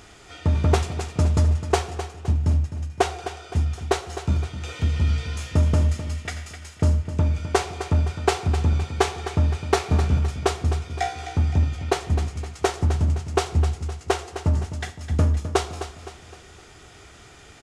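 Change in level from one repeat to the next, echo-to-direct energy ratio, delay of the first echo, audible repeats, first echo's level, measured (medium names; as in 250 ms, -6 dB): -7.0 dB, -10.0 dB, 258 ms, 4, -11.0 dB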